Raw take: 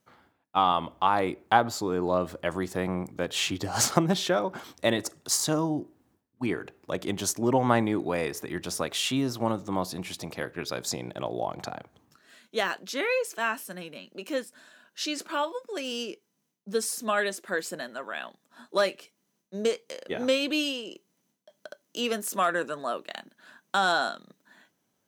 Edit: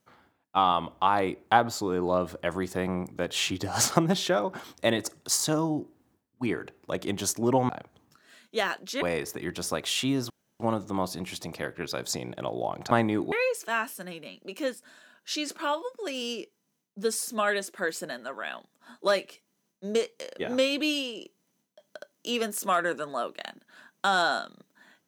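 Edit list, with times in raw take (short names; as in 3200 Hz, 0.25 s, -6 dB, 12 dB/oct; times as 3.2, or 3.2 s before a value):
7.69–8.1 swap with 11.69–13.02
9.38 insert room tone 0.30 s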